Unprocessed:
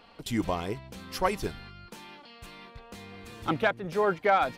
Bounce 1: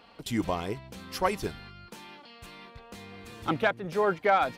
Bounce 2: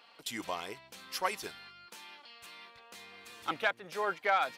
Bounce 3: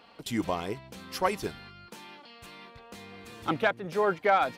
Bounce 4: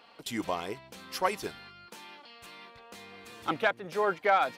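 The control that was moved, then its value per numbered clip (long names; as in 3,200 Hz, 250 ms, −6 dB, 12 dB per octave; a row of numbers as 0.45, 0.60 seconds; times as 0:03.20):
high-pass filter, corner frequency: 44, 1,400, 140, 450 Hertz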